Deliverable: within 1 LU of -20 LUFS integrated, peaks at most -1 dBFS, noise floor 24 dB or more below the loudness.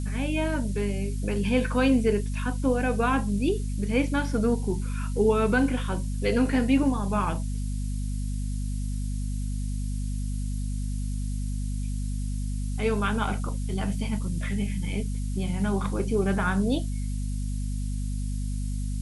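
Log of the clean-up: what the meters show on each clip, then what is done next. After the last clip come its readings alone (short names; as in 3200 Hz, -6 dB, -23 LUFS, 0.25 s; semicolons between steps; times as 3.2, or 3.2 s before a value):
hum 50 Hz; harmonics up to 250 Hz; hum level -27 dBFS; noise floor -29 dBFS; noise floor target -52 dBFS; loudness -28.0 LUFS; peak -10.5 dBFS; loudness target -20.0 LUFS
-> de-hum 50 Hz, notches 5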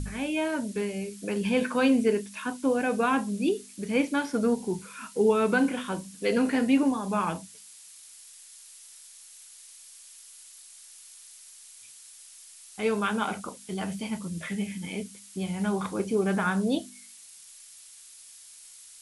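hum none; noise floor -50 dBFS; noise floor target -52 dBFS
-> noise print and reduce 6 dB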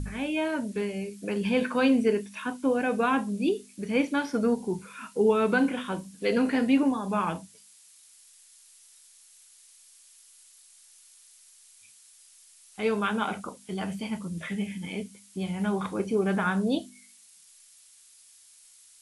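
noise floor -56 dBFS; loudness -28.0 LUFS; peak -11.5 dBFS; loudness target -20.0 LUFS
-> gain +8 dB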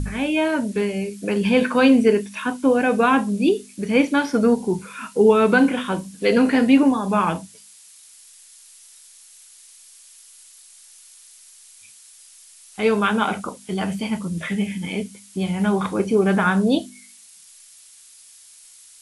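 loudness -20.0 LUFS; peak -3.5 dBFS; noise floor -48 dBFS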